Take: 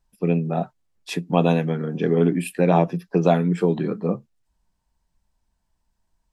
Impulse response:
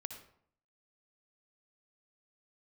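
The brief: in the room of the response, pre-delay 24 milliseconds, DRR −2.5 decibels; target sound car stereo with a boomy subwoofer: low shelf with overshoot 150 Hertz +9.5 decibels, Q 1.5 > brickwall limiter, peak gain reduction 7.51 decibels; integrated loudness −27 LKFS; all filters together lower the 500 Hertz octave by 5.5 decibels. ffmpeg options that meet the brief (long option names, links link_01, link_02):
-filter_complex "[0:a]equalizer=frequency=500:width_type=o:gain=-6,asplit=2[link_01][link_02];[1:a]atrim=start_sample=2205,adelay=24[link_03];[link_02][link_03]afir=irnorm=-1:irlink=0,volume=5dB[link_04];[link_01][link_04]amix=inputs=2:normalize=0,lowshelf=frequency=150:width_type=q:width=1.5:gain=9.5,volume=-7.5dB,alimiter=limit=-16dB:level=0:latency=1"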